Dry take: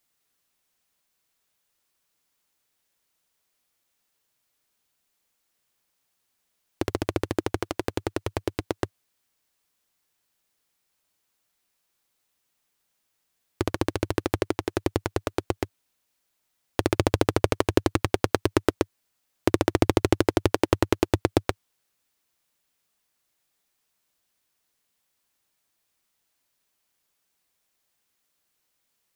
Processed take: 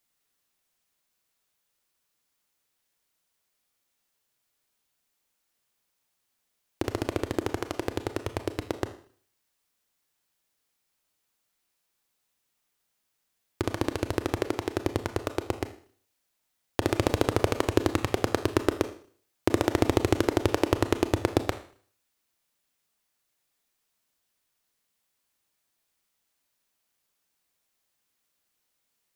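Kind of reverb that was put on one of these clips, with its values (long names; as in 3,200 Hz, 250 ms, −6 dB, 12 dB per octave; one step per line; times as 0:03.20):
four-comb reverb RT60 0.5 s, combs from 26 ms, DRR 9.5 dB
level −2.5 dB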